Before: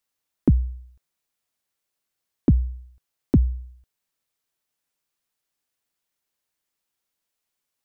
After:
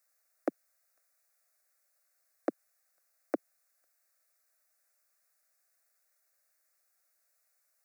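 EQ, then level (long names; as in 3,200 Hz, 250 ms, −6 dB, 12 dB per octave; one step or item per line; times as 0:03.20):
Butterworth high-pass 430 Hz 36 dB per octave
phaser with its sweep stopped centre 630 Hz, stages 8
+7.5 dB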